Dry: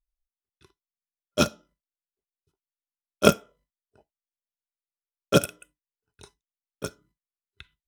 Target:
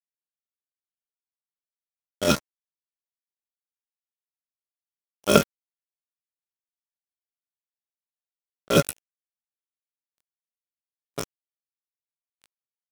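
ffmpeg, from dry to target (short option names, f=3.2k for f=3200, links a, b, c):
-af "acrusher=bits=3:mix=0:aa=0.5,atempo=0.61"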